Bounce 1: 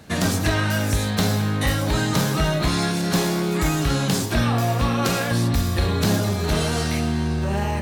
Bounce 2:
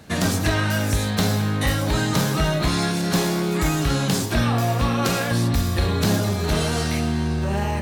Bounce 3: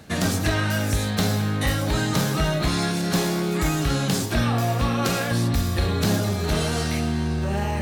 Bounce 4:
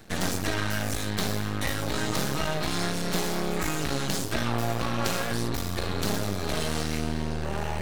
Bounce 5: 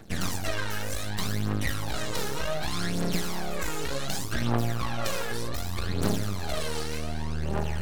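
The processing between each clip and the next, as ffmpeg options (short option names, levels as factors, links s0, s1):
-af anull
-af "bandreject=f=990:w=16,areverse,acompressor=mode=upward:threshold=0.0794:ratio=2.5,areverse,volume=0.841"
-filter_complex "[0:a]acrossover=split=220|740|3600[s0][s1][s2][s3];[s0]alimiter=limit=0.0631:level=0:latency=1:release=190[s4];[s4][s1][s2][s3]amix=inputs=4:normalize=0,aeval=exprs='max(val(0),0)':c=same"
-af "aphaser=in_gain=1:out_gain=1:delay=2.4:decay=0.6:speed=0.66:type=triangular,volume=0.596"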